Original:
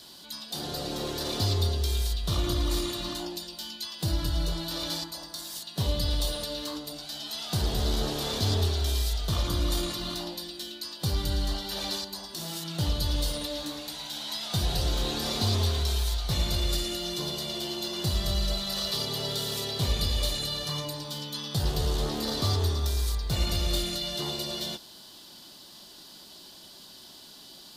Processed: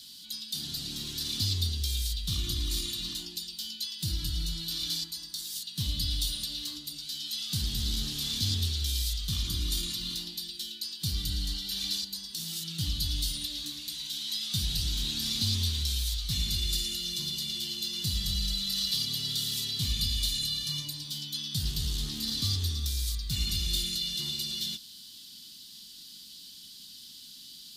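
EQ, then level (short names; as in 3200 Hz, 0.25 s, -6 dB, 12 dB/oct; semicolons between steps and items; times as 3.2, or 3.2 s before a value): EQ curve 250 Hz 0 dB, 540 Hz -26 dB, 3300 Hz +6 dB; -4.5 dB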